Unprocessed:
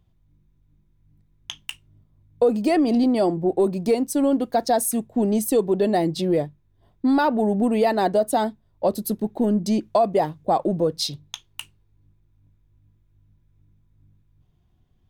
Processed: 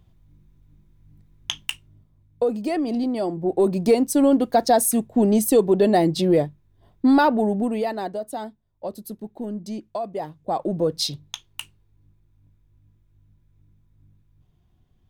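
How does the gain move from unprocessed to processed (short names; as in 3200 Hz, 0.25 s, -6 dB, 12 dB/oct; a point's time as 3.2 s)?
1.55 s +6.5 dB
2.59 s -5 dB
3.28 s -5 dB
3.75 s +3 dB
7.21 s +3 dB
8.17 s -10 dB
10.13 s -10 dB
10.95 s +1 dB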